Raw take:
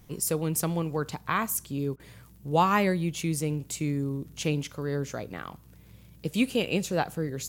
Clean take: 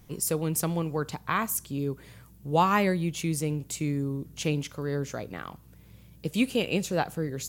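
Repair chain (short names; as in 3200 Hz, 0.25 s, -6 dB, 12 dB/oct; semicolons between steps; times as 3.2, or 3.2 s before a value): de-click; interpolate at 1.96, 35 ms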